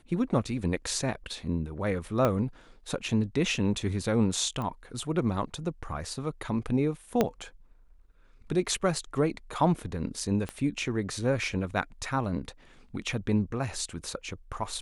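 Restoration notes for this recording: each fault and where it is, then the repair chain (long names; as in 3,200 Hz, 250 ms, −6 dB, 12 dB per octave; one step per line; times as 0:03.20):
0:02.25: click −13 dBFS
0:04.62: click −23 dBFS
0:07.21: click −10 dBFS
0:10.49: click −21 dBFS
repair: click removal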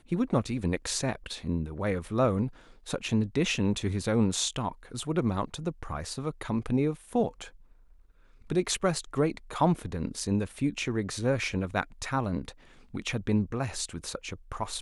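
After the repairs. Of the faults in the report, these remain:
0:02.25: click
0:07.21: click
0:10.49: click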